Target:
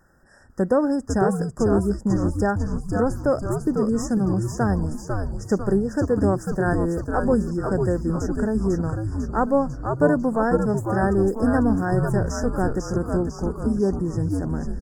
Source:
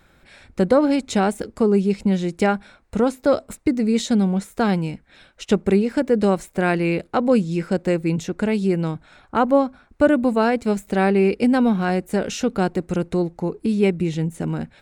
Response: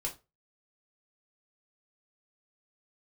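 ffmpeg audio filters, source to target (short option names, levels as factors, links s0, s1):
-filter_complex "[0:a]afftfilt=real='re*(1-between(b*sr/4096,1900,4900))':imag='im*(1-between(b*sr/4096,1900,4900))':win_size=4096:overlap=0.75,asplit=9[s0][s1][s2][s3][s4][s5][s6][s7][s8];[s1]adelay=498,afreqshift=-110,volume=0.631[s9];[s2]adelay=996,afreqshift=-220,volume=0.359[s10];[s3]adelay=1494,afreqshift=-330,volume=0.204[s11];[s4]adelay=1992,afreqshift=-440,volume=0.117[s12];[s5]adelay=2490,afreqshift=-550,volume=0.0668[s13];[s6]adelay=2988,afreqshift=-660,volume=0.038[s14];[s7]adelay=3486,afreqshift=-770,volume=0.0216[s15];[s8]adelay=3984,afreqshift=-880,volume=0.0123[s16];[s0][s9][s10][s11][s12][s13][s14][s15][s16]amix=inputs=9:normalize=0,volume=0.668"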